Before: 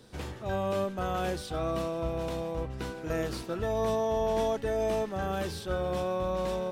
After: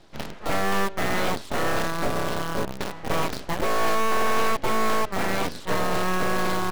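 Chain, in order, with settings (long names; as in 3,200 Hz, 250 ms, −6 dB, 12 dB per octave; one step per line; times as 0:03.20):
low-pass filter 4,700 Hz
full-wave rectification
in parallel at −4 dB: bit reduction 5 bits
on the sum: level +4 dB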